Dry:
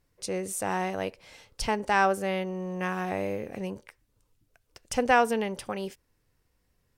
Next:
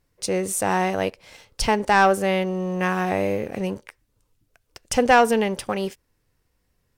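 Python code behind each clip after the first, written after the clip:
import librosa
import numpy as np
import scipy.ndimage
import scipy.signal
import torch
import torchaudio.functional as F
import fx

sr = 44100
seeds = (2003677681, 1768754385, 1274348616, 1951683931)

y = fx.leveller(x, sr, passes=1)
y = y * 10.0 ** (4.0 / 20.0)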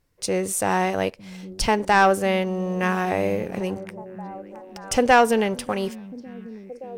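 y = fx.echo_stepped(x, sr, ms=573, hz=160.0, octaves=0.7, feedback_pct=70, wet_db=-10.5)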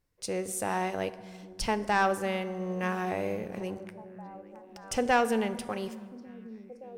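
y = fx.rev_fdn(x, sr, rt60_s=1.8, lf_ratio=1.0, hf_ratio=0.55, size_ms=27.0, drr_db=12.5)
y = y * 10.0 ** (-9.0 / 20.0)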